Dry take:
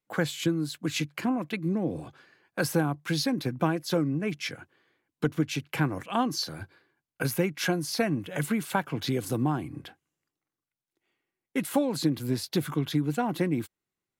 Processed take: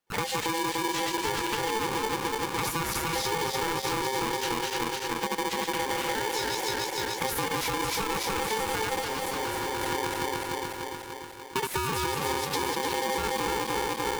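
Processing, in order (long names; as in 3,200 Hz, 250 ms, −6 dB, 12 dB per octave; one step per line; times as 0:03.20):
feedback delay that plays each chunk backwards 147 ms, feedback 80%, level −2 dB
0:02.67–0:03.16: bass and treble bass −12 dB, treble +4 dB
brickwall limiter −19 dBFS, peak gain reduction 9 dB
0:06.09–0:07.22: flat-topped bell 560 Hz −8 dB 1 octave
downward compressor, threshold −30 dBFS, peak gain reduction 7 dB
0:08.99–0:09.80: gain into a clipping stage and back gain 32 dB
ring modulator with a square carrier 660 Hz
level +4 dB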